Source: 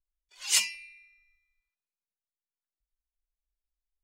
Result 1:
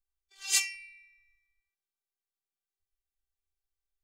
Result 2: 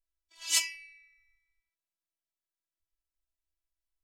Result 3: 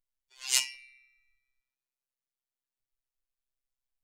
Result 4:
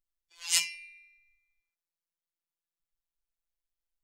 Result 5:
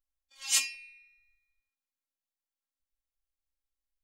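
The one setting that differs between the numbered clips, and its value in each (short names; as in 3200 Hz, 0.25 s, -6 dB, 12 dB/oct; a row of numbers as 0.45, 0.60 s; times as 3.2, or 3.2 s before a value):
robotiser, frequency: 390, 330, 130, 170, 270 Hz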